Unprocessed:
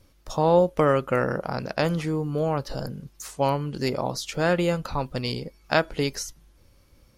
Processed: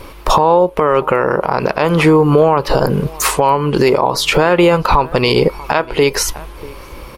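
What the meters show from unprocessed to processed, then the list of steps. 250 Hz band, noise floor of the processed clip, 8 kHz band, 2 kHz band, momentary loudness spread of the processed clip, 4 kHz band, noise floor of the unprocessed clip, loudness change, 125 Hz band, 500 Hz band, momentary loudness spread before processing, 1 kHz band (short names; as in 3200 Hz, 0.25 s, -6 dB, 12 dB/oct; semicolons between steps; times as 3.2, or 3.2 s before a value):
+11.5 dB, -34 dBFS, +15.0 dB, +12.0 dB, 7 LU, +13.5 dB, -59 dBFS, +12.0 dB, +10.0 dB, +12.0 dB, 13 LU, +14.0 dB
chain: fifteen-band EQ 100 Hz -7 dB, 400 Hz +8 dB, 1000 Hz +12 dB, 2500 Hz +6 dB, 6300 Hz -7 dB; compressor 16:1, threshold -28 dBFS, peak gain reduction 20.5 dB; bell 240 Hz -4 dB 0.65 oct; outdoor echo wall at 110 m, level -24 dB; maximiser +25 dB; gain -1 dB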